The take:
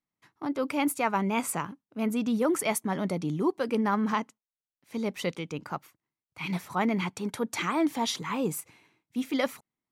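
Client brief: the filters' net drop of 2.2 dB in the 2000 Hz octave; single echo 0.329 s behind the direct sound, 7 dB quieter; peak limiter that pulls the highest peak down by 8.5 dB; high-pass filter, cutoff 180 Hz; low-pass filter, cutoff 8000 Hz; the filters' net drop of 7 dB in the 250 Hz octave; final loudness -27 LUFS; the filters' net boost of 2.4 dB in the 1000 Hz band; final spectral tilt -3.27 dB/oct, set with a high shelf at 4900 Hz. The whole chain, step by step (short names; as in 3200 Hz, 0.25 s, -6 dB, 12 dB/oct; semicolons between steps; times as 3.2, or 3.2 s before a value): HPF 180 Hz; LPF 8000 Hz; bell 250 Hz -7.5 dB; bell 1000 Hz +4 dB; bell 2000 Hz -5 dB; high shelf 4900 Hz +8 dB; limiter -21 dBFS; echo 0.329 s -7 dB; gain +6.5 dB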